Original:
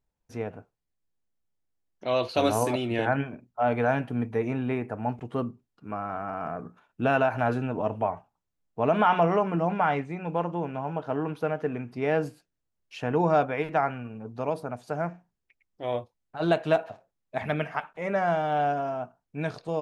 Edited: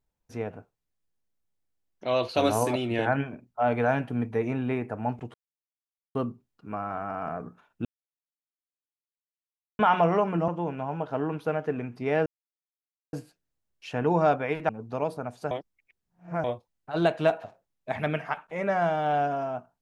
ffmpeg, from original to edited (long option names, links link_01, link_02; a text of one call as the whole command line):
ffmpeg -i in.wav -filter_complex "[0:a]asplit=9[link_01][link_02][link_03][link_04][link_05][link_06][link_07][link_08][link_09];[link_01]atrim=end=5.34,asetpts=PTS-STARTPTS,afade=type=out:start_time=5.336:duration=0.004:curve=hsin,apad=pad_dur=0.81[link_10];[link_02]atrim=start=5.34:end=7.04,asetpts=PTS-STARTPTS,afade=type=in:duration=0.004:curve=hsin,afade=type=out:start_time=1.696:duration=0.004:curve=hsin[link_11];[link_03]atrim=start=7.04:end=8.98,asetpts=PTS-STARTPTS,volume=0[link_12];[link_04]atrim=start=8.98:end=9.672,asetpts=PTS-STARTPTS,afade=type=in:duration=0.004:curve=hsin[link_13];[link_05]atrim=start=10.438:end=12.22,asetpts=PTS-STARTPTS,afade=type=out:start_time=1.778:duration=0.004:curve=hsin,apad=pad_dur=0.87[link_14];[link_06]atrim=start=12.22:end=13.782,asetpts=PTS-STARTPTS,afade=type=in:duration=0.004:curve=hsin[link_15];[link_07]atrim=start=14.148:end=14.972[link_16];[link_08]atrim=start=14.968:end=15.902,asetpts=PTS-STARTPTS,areverse[link_17];[link_09]atrim=start=15.898[link_18];[link_10][link_11][link_12][link_13]concat=n=4:v=0:a=1[link_19];[link_14][link_15]concat=n=2:v=0:a=1[link_20];[link_19][link_20]acrossfade=duration=0.004:curve1=hsin:curve2=hsin[link_21];[link_21][link_16]acrossfade=duration=0.004:curve1=hsin:curve2=hsin[link_22];[link_22][link_17]acrossfade=duration=0.004:curve1=hsin:curve2=hsin[link_23];[link_23][link_18]acrossfade=duration=0.004:curve1=hsin:curve2=hsin" out.wav